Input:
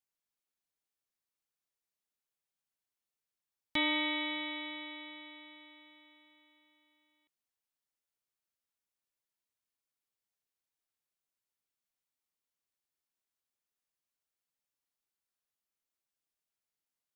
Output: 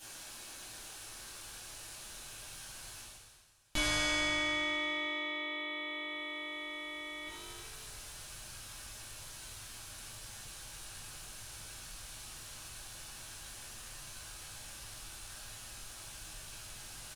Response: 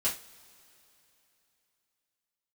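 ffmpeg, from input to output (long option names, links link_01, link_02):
-filter_complex "[0:a]asplit=2[link_01][link_02];[link_02]aeval=exprs='0.112*sin(PI/2*5.01*val(0)/0.112)':channel_layout=same,volume=-10dB[link_03];[link_01][link_03]amix=inputs=2:normalize=0,asplit=4[link_04][link_05][link_06][link_07];[link_05]adelay=325,afreqshift=49,volume=-19dB[link_08];[link_06]adelay=650,afreqshift=98,volume=-27dB[link_09];[link_07]adelay=975,afreqshift=147,volume=-34.9dB[link_10];[link_04][link_08][link_09][link_10]amix=inputs=4:normalize=0,asubboost=boost=6.5:cutoff=110,areverse,acompressor=mode=upward:threshold=-38dB:ratio=2.5,areverse[link_11];[1:a]atrim=start_sample=2205,afade=type=out:start_time=0.35:duration=0.01,atrim=end_sample=15876,asetrate=23814,aresample=44100[link_12];[link_11][link_12]afir=irnorm=-1:irlink=0,acompressor=threshold=-44dB:ratio=2,bandreject=frequency=2100:width=12,volume=1dB"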